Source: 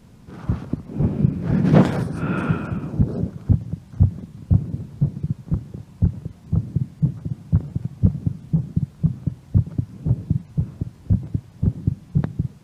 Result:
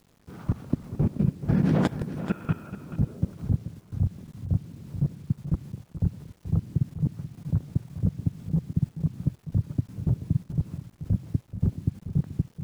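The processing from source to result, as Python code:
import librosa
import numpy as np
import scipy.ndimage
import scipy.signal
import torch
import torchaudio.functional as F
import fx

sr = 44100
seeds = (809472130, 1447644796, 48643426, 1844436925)

y = fx.level_steps(x, sr, step_db=21)
y = fx.quant_dither(y, sr, seeds[0], bits=10, dither='none')
y = y + 10.0 ** (-12.0 / 20.0) * np.pad(y, (int(431 * sr / 1000.0), 0))[:len(y)]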